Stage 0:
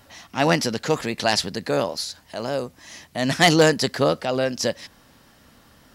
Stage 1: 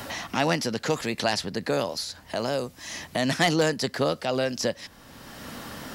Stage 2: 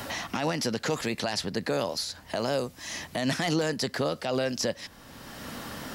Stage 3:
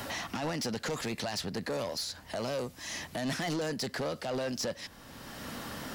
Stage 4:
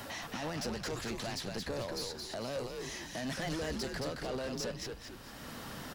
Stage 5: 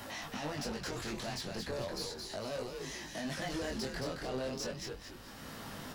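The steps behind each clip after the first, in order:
multiband upward and downward compressor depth 70%; level −4 dB
brickwall limiter −17 dBFS, peak gain reduction 9 dB
soft clipping −27 dBFS, distortion −10 dB; level −1.5 dB
echo with shifted repeats 221 ms, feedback 39%, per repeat −100 Hz, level −4 dB; level −5 dB
chorus effect 0.36 Hz, delay 19 ms, depth 4.5 ms; level +2 dB

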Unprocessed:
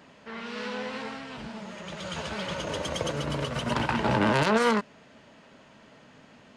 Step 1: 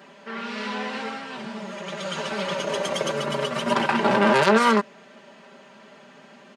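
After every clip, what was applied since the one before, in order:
high-pass filter 240 Hz 12 dB per octave
parametric band 5,700 Hz −2.5 dB 2.5 octaves
comb filter 5.1 ms, depth 80%
level +4.5 dB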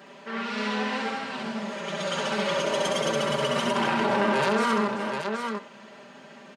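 hum removal 91.9 Hz, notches 34
on a send: multi-tap delay 66/388/779 ms −4/−18/−12.5 dB
on the sum: brickwall limiter −15.5 dBFS, peak gain reduction 10.5 dB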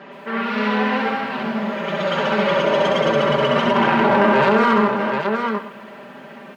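low-pass filter 2,600 Hz 12 dB per octave
in parallel at −10 dB: gain into a clipping stage and back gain 21 dB
on the sum: feedback echo at a low word length 117 ms, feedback 35%, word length 9 bits, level −14.5 dB
level +6.5 dB

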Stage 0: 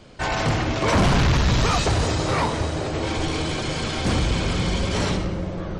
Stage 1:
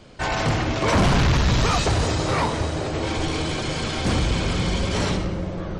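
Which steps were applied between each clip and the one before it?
no processing that can be heard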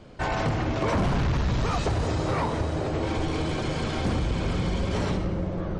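high-shelf EQ 2,100 Hz −9 dB
downward compressor, threshold −22 dBFS, peak gain reduction 6 dB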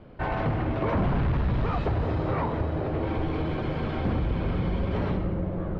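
high-frequency loss of the air 400 metres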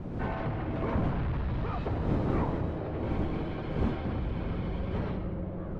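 wind on the microphone 250 Hz −29 dBFS
level −6.5 dB

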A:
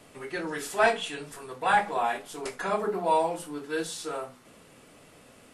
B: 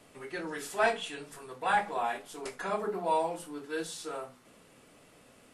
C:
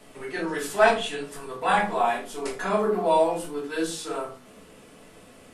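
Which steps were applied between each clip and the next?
mains-hum notches 50/100/150 Hz; level −4.5 dB
rectangular room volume 170 cubic metres, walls furnished, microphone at 1.5 metres; level +4.5 dB

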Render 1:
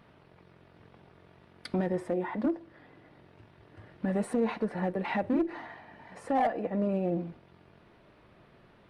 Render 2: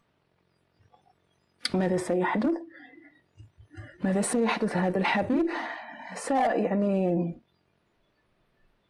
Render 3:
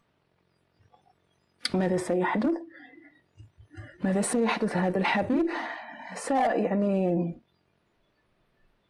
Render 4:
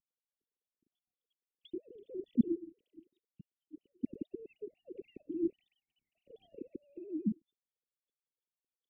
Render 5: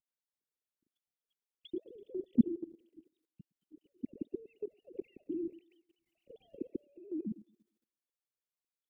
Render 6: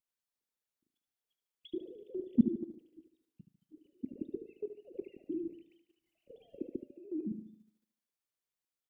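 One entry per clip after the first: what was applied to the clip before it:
noise reduction from a noise print of the clip's start 22 dB; parametric band 7,100 Hz +8.5 dB 1.9 octaves; in parallel at +1 dB: compressor whose output falls as the input rises −34 dBFS, ratio −1
no processing that can be heard
three sine waves on the formant tracks; inverse Chebyshev band-stop filter 850–1,700 Hz, stop band 80 dB; harmonic and percussive parts rebalanced harmonic −8 dB; level +4 dB
automatic gain control gain up to 10.5 dB; feedback echo with a high-pass in the loop 112 ms, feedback 60%, high-pass 340 Hz, level −20.5 dB; output level in coarse steps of 16 dB; level −4 dB
repeating echo 74 ms, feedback 46%, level −10 dB; convolution reverb, pre-delay 5 ms, DRR 16 dB

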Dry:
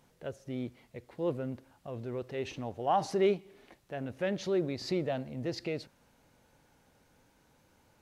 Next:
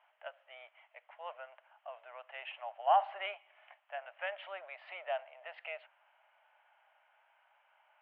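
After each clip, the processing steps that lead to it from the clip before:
Chebyshev band-pass filter 620–3,100 Hz, order 5
level +2 dB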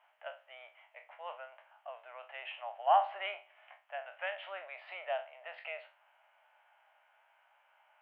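peak hold with a decay on every bin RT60 0.31 s

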